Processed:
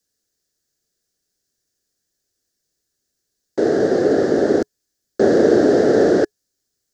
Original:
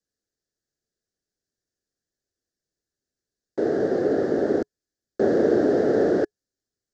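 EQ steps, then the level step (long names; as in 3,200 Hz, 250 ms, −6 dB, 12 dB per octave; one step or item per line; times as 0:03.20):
high-shelf EQ 3,800 Hz +10.5 dB
+6.0 dB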